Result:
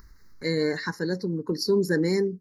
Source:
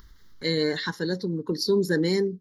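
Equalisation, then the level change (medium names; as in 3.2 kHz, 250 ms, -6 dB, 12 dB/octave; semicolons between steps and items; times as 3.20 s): Butterworth band-stop 3.3 kHz, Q 1.7; 0.0 dB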